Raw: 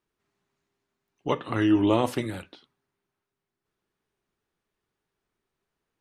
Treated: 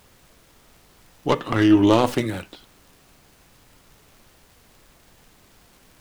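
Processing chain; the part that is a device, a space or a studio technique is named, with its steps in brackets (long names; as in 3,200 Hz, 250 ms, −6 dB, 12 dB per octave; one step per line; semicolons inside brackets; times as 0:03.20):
record under a worn stylus (stylus tracing distortion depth 0.1 ms; surface crackle; pink noise bed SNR 29 dB)
level +6 dB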